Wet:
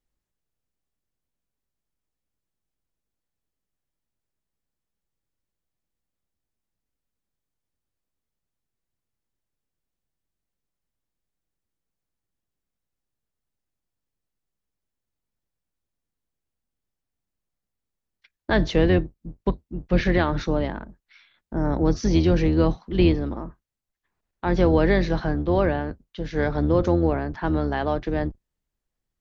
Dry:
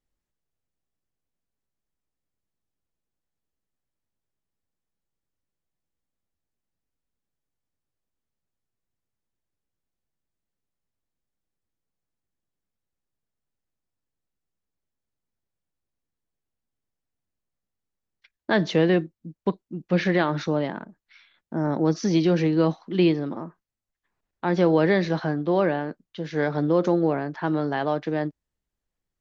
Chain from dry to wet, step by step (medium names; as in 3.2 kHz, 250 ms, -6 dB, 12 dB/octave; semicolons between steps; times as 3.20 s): octave divider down 2 oct, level 0 dB